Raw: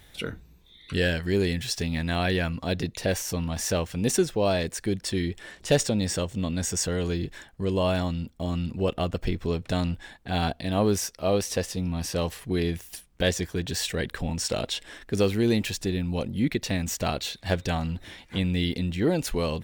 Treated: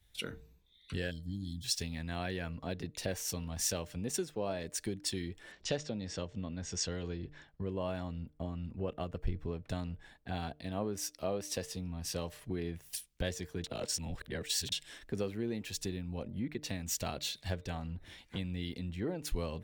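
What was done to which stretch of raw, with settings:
0:01.11–0:01.64: gain on a spectral selection 330–3,100 Hz −30 dB
0:05.52–0:07.62: low-pass filter 6,100 Hz 24 dB per octave
0:13.64–0:14.72: reverse
whole clip: hum removal 150.4 Hz, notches 4; downward compressor 5 to 1, threshold −36 dBFS; multiband upward and downward expander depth 100%

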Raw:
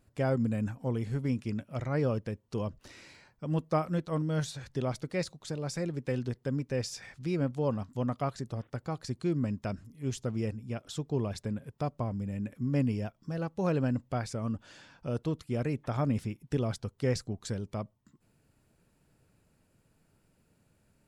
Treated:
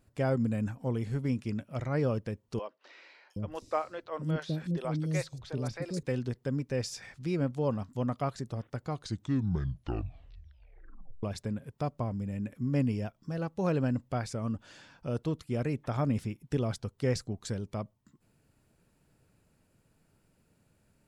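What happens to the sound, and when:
0:02.59–0:06.03: three-band delay without the direct sound mids, highs, lows 710/770 ms, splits 400/4,600 Hz
0:08.82: tape stop 2.41 s

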